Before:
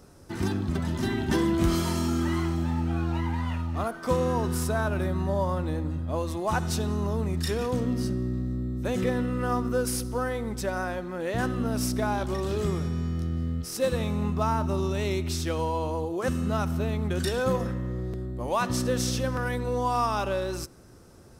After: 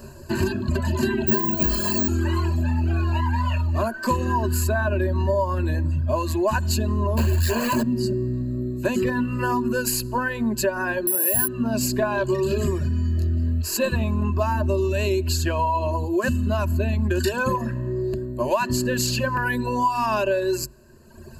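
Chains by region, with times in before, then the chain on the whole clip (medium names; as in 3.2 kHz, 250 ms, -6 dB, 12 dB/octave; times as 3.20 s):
1.27–2.08 s: low-pass 11 kHz + comb 4.9 ms, depth 71% + careless resampling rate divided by 2×, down none, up zero stuff
7.17–7.83 s: peaking EQ 2.7 kHz -7.5 dB 0.23 oct + companded quantiser 2-bit + doubling 13 ms -5 dB
11.07–11.48 s: careless resampling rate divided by 4×, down none, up zero stuff + band-stop 1.1 kHz, Q 13
whole clip: reverb removal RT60 1.3 s; rippled EQ curve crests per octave 1.4, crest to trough 17 dB; compression 4:1, threshold -28 dBFS; trim +8.5 dB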